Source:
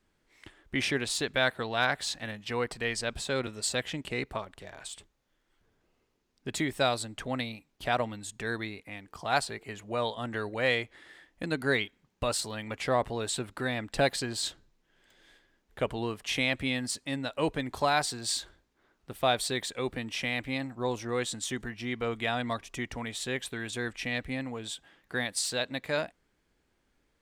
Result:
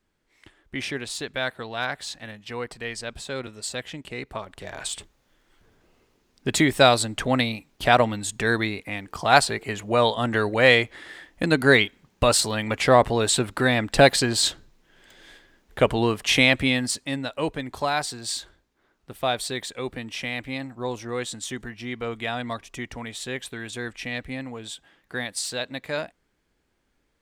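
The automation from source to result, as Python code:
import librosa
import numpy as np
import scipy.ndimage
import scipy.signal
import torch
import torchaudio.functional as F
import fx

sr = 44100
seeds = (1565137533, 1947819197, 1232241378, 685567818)

y = fx.gain(x, sr, db=fx.line((4.23, -1.0), (4.78, 11.0), (16.43, 11.0), (17.54, 1.5)))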